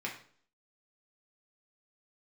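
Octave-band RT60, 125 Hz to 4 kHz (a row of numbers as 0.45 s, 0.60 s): 0.55 s, 0.60 s, 0.55 s, 0.50 s, 0.45 s, 0.45 s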